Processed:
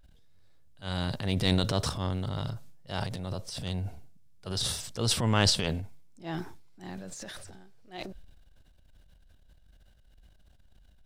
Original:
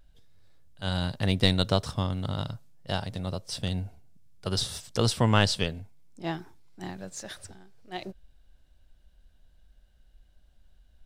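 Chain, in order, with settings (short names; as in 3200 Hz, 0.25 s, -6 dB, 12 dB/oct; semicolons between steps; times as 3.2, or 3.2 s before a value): transient shaper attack -7 dB, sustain +10 dB; gain -2.5 dB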